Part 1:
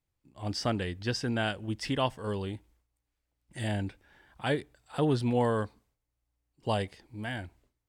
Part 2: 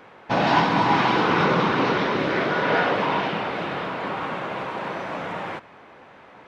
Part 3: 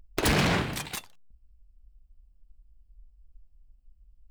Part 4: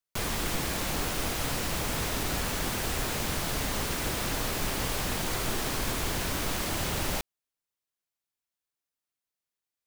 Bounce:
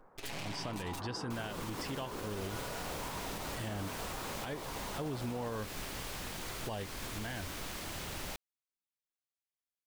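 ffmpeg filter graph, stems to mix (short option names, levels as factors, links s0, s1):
-filter_complex "[0:a]volume=0.75[s0];[1:a]lowpass=f=1400:w=0.5412,lowpass=f=1400:w=1.3066,acompressor=threshold=0.0501:ratio=6,volume=0.2[s1];[2:a]highshelf=f=1800:t=q:w=1.5:g=6,aecho=1:1:7.3:0.74,aeval=exprs='max(val(0),0)':c=same,volume=0.211[s2];[3:a]equalizer=f=2900:w=0.39:g=2.5,adelay=1150,volume=0.251[s3];[s0][s3]amix=inputs=2:normalize=0,alimiter=level_in=1.26:limit=0.0631:level=0:latency=1:release=287,volume=0.794,volume=1[s4];[s1][s2][s4]amix=inputs=3:normalize=0,alimiter=level_in=1.88:limit=0.0631:level=0:latency=1:release=95,volume=0.531"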